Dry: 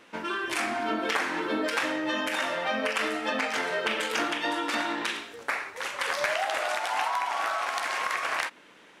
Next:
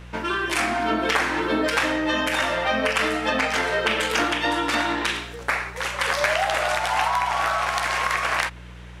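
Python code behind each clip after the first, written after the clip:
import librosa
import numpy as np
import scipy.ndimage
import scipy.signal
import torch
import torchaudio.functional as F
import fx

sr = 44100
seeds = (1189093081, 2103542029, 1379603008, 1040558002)

y = fx.dmg_buzz(x, sr, base_hz=60.0, harmonics=3, level_db=-47.0, tilt_db=-5, odd_only=False)
y = y * 10.0 ** (6.0 / 20.0)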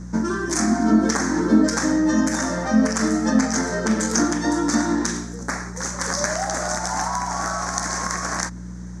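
y = fx.curve_eq(x, sr, hz=(120.0, 210.0, 460.0, 1800.0, 2800.0, 6200.0, 13000.0), db=(0, 13, -6, -8, -29, 10, -14))
y = y * 10.0 ** (4.0 / 20.0)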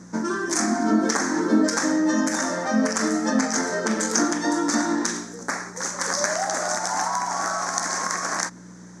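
y = scipy.signal.sosfilt(scipy.signal.butter(2, 270.0, 'highpass', fs=sr, output='sos'), x)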